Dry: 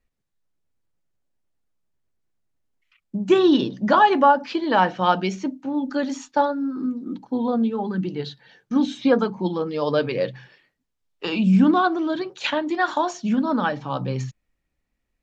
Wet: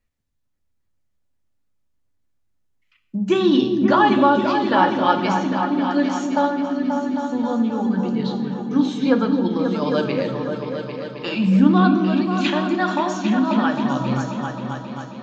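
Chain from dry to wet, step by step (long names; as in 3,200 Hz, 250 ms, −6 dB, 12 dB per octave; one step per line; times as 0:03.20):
parametric band 480 Hz −2.5 dB 1.6 octaves
echo whose low-pass opens from repeat to repeat 267 ms, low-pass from 400 Hz, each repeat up 2 octaves, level −3 dB
on a send at −7 dB: convolution reverb RT60 1.0 s, pre-delay 3 ms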